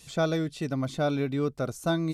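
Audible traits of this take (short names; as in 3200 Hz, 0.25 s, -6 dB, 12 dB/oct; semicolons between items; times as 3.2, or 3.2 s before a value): noise floor -53 dBFS; spectral tilt -6.0 dB/oct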